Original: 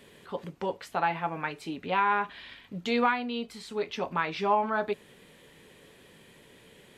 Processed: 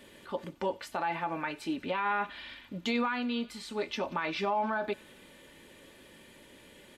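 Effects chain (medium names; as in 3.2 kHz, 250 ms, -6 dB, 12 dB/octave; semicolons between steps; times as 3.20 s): comb 3.4 ms, depth 45%; feedback echo behind a high-pass 91 ms, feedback 71%, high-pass 2.6 kHz, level -19.5 dB; peak limiter -22 dBFS, peak gain reduction 10.5 dB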